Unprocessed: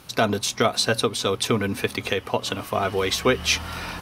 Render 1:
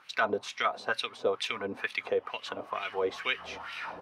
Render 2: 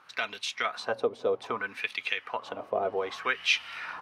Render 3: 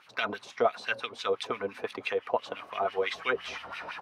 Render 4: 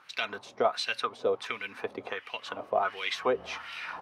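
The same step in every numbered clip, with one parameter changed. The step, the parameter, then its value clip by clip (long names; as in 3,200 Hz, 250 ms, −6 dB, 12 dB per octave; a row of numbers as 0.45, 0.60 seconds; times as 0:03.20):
LFO wah, speed: 2.2, 0.63, 5.9, 1.4 Hertz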